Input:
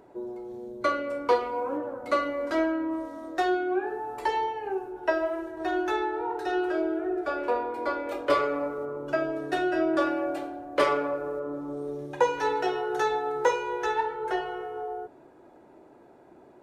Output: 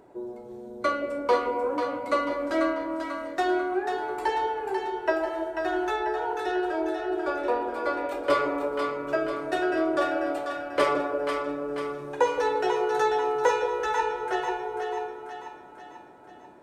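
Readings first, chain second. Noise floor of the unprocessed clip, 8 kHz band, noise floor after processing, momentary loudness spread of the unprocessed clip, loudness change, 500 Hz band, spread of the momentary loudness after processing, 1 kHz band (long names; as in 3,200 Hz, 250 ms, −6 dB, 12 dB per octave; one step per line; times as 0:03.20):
−54 dBFS, can't be measured, −47 dBFS, 9 LU, +1.0 dB, +1.5 dB, 8 LU, +1.5 dB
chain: parametric band 8,200 Hz +4 dB 0.3 octaves
on a send: echo with a time of its own for lows and highs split 700 Hz, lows 169 ms, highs 491 ms, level −5.5 dB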